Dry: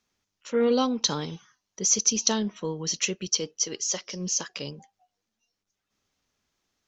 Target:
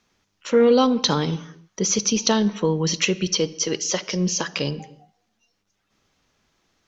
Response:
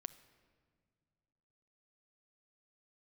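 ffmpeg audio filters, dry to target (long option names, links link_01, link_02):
-filter_complex "[0:a]acrossover=split=5300[link_01][link_02];[link_02]acompressor=threshold=-37dB:ratio=4:attack=1:release=60[link_03];[link_01][link_03]amix=inputs=2:normalize=0,highshelf=frequency=6000:gain=-9.5,acompressor=threshold=-32dB:ratio=1.5,asplit=2[link_04][link_05];[1:a]atrim=start_sample=2205,afade=type=out:start_time=0.4:duration=0.01,atrim=end_sample=18081,asetrate=48510,aresample=44100[link_06];[link_05][link_06]afir=irnorm=-1:irlink=0,volume=14dB[link_07];[link_04][link_07]amix=inputs=2:normalize=0"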